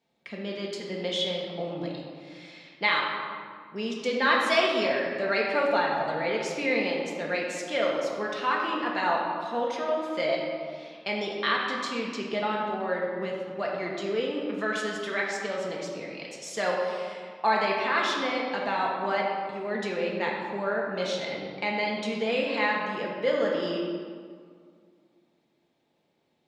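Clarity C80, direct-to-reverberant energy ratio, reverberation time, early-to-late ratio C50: 2.5 dB, -3.0 dB, 2.0 s, 1.0 dB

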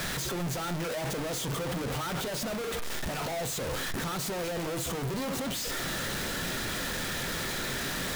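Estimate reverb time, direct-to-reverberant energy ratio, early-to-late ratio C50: 0.40 s, 10.0 dB, 18.5 dB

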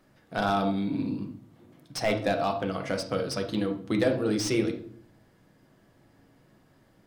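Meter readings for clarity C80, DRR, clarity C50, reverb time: 14.0 dB, 3.5 dB, 9.5 dB, no single decay rate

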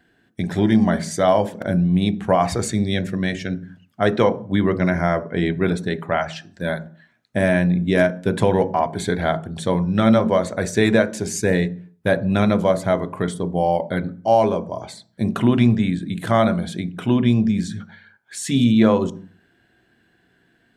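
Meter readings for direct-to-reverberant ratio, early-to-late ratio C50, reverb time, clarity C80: 11.0 dB, 18.5 dB, 0.45 s, 23.0 dB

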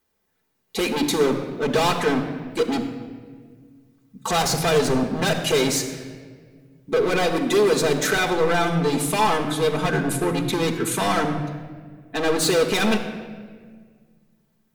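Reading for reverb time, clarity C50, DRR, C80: 1.7 s, 8.0 dB, 1.0 dB, 8.5 dB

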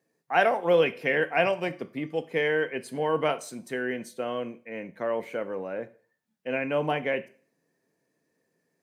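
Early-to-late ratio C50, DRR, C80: 18.5 dB, 12.0 dB, 23.0 dB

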